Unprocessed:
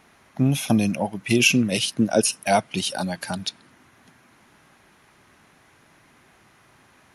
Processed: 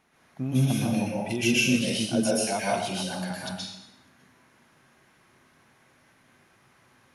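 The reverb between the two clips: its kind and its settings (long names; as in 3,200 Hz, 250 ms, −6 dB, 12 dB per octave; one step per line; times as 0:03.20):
dense smooth reverb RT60 0.86 s, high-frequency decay 0.9×, pre-delay 110 ms, DRR −6 dB
level −11.5 dB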